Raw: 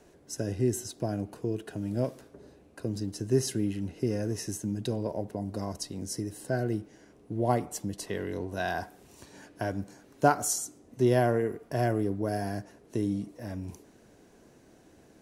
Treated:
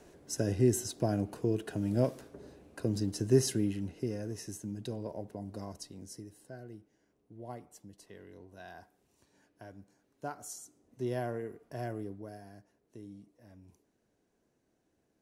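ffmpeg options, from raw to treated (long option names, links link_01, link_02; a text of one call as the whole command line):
ffmpeg -i in.wav -af "volume=8dB,afade=type=out:start_time=3.28:duration=0.89:silence=0.375837,afade=type=out:start_time=5.58:duration=0.97:silence=0.298538,afade=type=in:start_time=10.25:duration=0.83:silence=0.446684,afade=type=out:start_time=12.01:duration=0.41:silence=0.398107" out.wav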